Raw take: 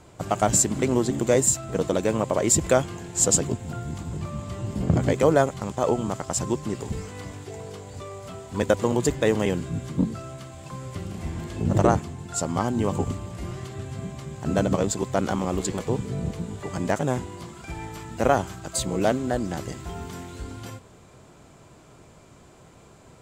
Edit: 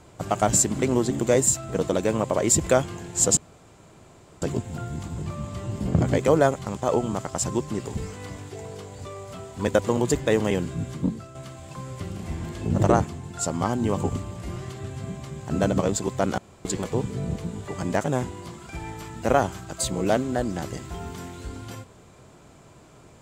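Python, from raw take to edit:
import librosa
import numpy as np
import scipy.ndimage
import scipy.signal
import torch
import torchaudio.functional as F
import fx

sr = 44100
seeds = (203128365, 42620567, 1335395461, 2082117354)

y = fx.edit(x, sr, fx.insert_room_tone(at_s=3.37, length_s=1.05),
    fx.fade_out_to(start_s=9.87, length_s=0.43, floor_db=-8.5),
    fx.room_tone_fill(start_s=15.33, length_s=0.27), tone=tone)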